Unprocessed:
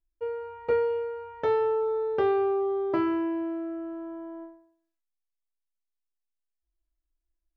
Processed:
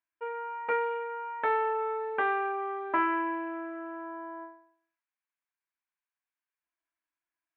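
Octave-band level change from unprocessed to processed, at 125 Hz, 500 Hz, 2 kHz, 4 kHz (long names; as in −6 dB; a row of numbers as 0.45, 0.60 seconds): below −15 dB, −8.0 dB, +8.5 dB, can't be measured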